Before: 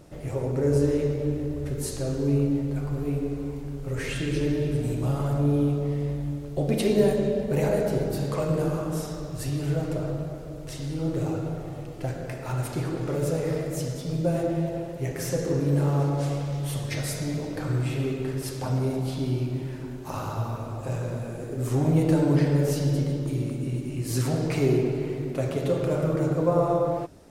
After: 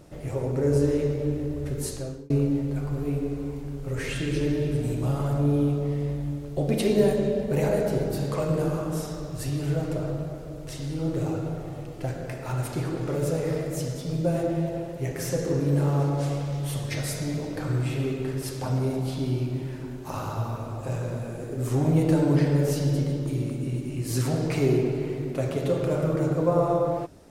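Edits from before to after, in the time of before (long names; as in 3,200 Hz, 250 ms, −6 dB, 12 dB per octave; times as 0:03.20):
0:01.87–0:02.30: fade out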